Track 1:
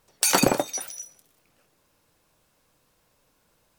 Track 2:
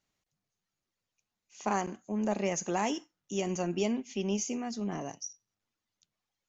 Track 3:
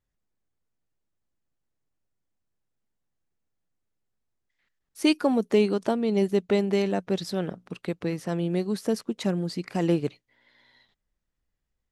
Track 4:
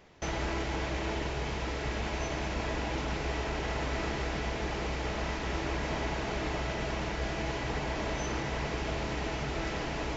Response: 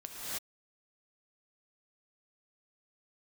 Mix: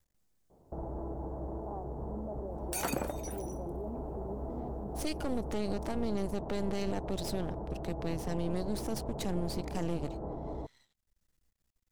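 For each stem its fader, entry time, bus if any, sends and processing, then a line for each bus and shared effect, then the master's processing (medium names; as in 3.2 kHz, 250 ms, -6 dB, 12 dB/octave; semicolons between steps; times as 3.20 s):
-10.0 dB, 2.50 s, no bus, no send, peaking EQ 4.9 kHz -8.5 dB 1.6 oct
-4.5 dB, 0.00 s, bus A, no send, high-pass 260 Hz
-4.5 dB, 0.00 s, no bus, no send, tone controls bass +3 dB, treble +8 dB; upward compressor, threshold -60 dBFS; half-wave rectifier
-2.5 dB, 0.50 s, bus A, no send, none
bus A: 0.0 dB, inverse Chebyshev low-pass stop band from 2.2 kHz, stop band 50 dB; peak limiter -31 dBFS, peak gain reduction 9 dB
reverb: none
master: peak limiter -23 dBFS, peak gain reduction 9 dB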